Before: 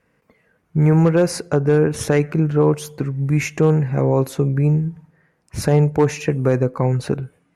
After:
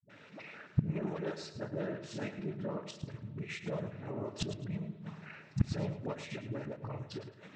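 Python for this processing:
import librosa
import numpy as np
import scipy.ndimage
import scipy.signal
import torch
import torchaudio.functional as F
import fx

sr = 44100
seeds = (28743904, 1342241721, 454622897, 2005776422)

y = fx.spec_quant(x, sr, step_db=15)
y = fx.peak_eq(y, sr, hz=3800.0, db=8.0, octaves=1.7)
y = fx.noise_vocoder(y, sr, seeds[0], bands=12)
y = fx.notch(y, sr, hz=500.0, q=12.0)
y = fx.dispersion(y, sr, late='highs', ms=93.0, hz=310.0)
y = fx.gate_flip(y, sr, shuts_db=-21.0, range_db=-29)
y = scipy.signal.sosfilt(scipy.signal.butter(2, 5200.0, 'lowpass', fs=sr, output='sos'), y)
y = fx.low_shelf(y, sr, hz=470.0, db=-3.0)
y = fx.echo_feedback(y, sr, ms=108, feedback_pct=26, wet_db=-11.5)
y = fx.rev_spring(y, sr, rt60_s=2.5, pass_ms=(32,), chirp_ms=30, drr_db=18.0)
y = F.gain(torch.from_numpy(y), 9.0).numpy()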